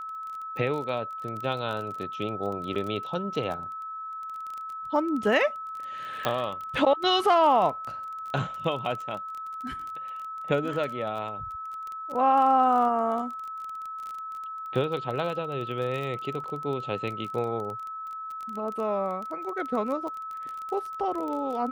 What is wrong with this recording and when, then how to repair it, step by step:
crackle 23/s -32 dBFS
tone 1300 Hz -34 dBFS
2.75–2.76 gap 6.6 ms
6.25 pop -12 dBFS
16.44 gap 3.8 ms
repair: de-click; notch 1300 Hz, Q 30; interpolate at 2.75, 6.6 ms; interpolate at 16.44, 3.8 ms

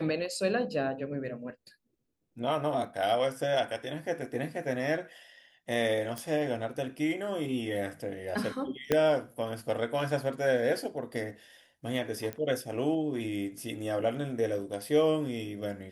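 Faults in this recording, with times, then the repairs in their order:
6.18 pop
8.92 pop -12 dBFS
12.33 pop -21 dBFS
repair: de-click

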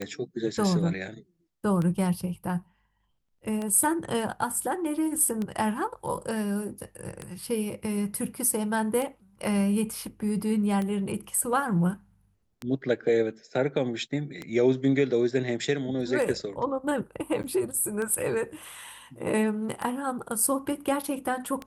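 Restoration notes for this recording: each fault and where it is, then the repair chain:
tick 33 1/3 rpm -19 dBFS
17.43–17.44 gap 9.6 ms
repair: de-click; interpolate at 17.43, 9.6 ms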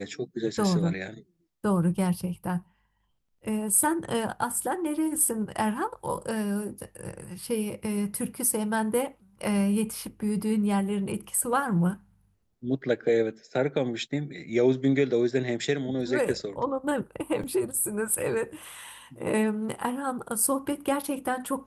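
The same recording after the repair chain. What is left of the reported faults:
none

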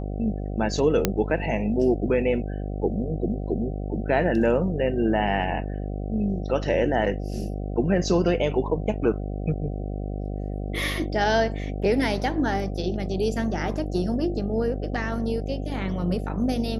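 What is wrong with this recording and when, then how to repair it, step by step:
buzz 50 Hz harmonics 15 -30 dBFS
1.05 pop -5 dBFS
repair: de-click; de-hum 50 Hz, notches 15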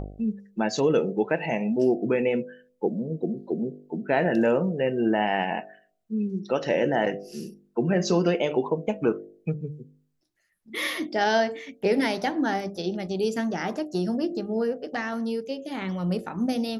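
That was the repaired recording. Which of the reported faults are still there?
none

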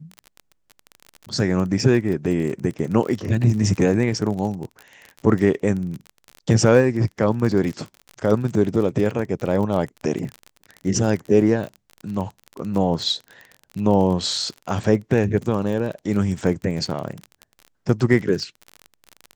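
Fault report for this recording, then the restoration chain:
crackle 33/s -27 dBFS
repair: de-click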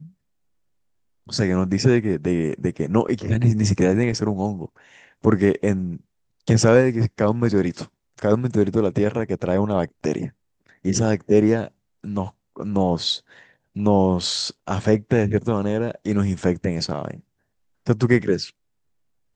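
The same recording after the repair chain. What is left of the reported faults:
none

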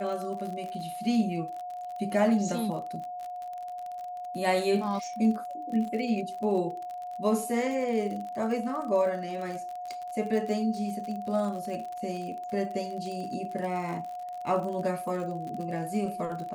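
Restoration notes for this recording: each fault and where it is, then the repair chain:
crackle 43/s -35 dBFS
tone 720 Hz -35 dBFS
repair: de-click; notch 720 Hz, Q 30

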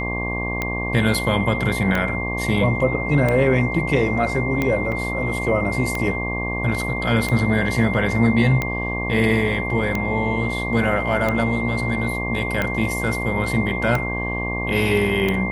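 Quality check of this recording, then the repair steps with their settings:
buzz 60 Hz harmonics 19 -27 dBFS
tick 45 rpm -9 dBFS
tone 2100 Hz -26 dBFS
4.92 gap 3.6 ms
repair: de-click; de-hum 60 Hz, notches 19; notch 2100 Hz, Q 30; interpolate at 4.92, 3.6 ms

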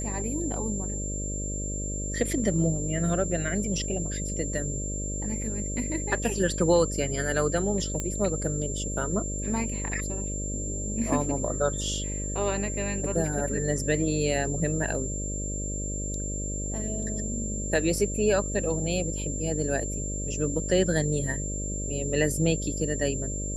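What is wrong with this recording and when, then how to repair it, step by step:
buzz 50 Hz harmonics 12 -33 dBFS
tone 7300 Hz -34 dBFS
8 pop -16 dBFS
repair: de-click; notch 7300 Hz, Q 30; de-hum 50 Hz, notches 12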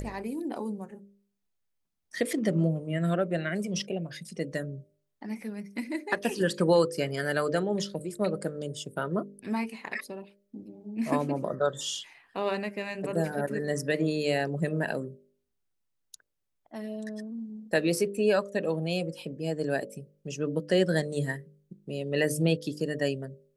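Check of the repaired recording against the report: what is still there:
none

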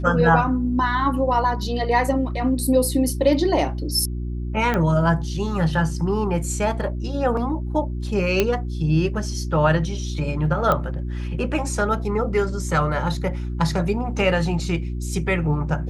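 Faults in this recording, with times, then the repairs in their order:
hum 60 Hz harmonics 6 -27 dBFS
4.74 pop -11 dBFS
8.4 pop -4 dBFS
10.72 pop -9 dBFS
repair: de-click; de-hum 60 Hz, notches 6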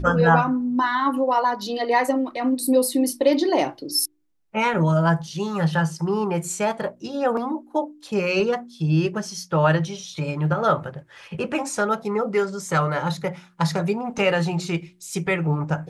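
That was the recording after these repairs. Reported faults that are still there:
none

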